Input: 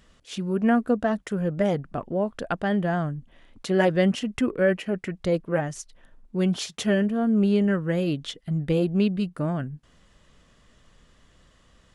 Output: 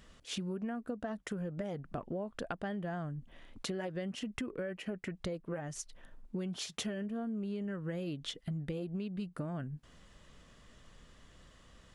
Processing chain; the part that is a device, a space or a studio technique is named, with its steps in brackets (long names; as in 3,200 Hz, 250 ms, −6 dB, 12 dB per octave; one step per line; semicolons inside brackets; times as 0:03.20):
serial compression, leveller first (downward compressor 3 to 1, threshold −23 dBFS, peak gain reduction 6 dB; downward compressor 6 to 1, threshold −35 dBFS, peak gain reduction 13.5 dB)
level −1 dB